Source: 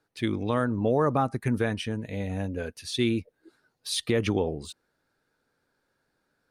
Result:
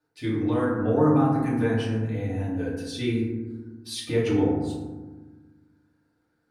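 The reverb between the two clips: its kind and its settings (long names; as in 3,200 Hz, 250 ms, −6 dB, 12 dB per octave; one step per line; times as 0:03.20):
feedback delay network reverb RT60 1.3 s, low-frequency decay 1.55×, high-frequency decay 0.35×, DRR −8.5 dB
level −9.5 dB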